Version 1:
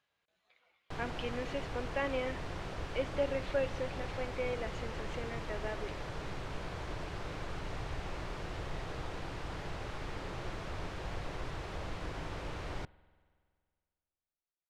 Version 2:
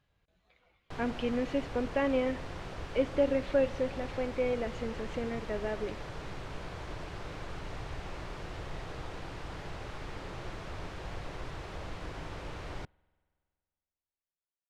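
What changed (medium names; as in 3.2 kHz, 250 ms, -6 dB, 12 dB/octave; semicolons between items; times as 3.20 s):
speech: remove high-pass 890 Hz 6 dB/octave; background: send -8.0 dB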